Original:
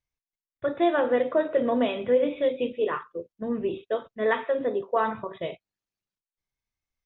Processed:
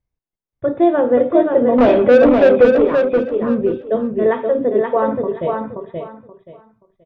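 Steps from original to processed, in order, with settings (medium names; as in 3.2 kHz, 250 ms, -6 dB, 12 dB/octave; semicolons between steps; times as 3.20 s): tilt shelf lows +9.5 dB, about 1.1 kHz; 1.78–2.77 s: overdrive pedal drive 24 dB, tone 1.3 kHz, clips at -6 dBFS; on a send: feedback delay 528 ms, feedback 23%, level -4 dB; on the sum: trim +3 dB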